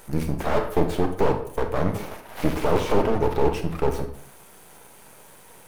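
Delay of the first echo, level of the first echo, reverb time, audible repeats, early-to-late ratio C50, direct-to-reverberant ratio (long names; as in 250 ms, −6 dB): no echo audible, no echo audible, 0.60 s, no echo audible, 9.0 dB, 6.0 dB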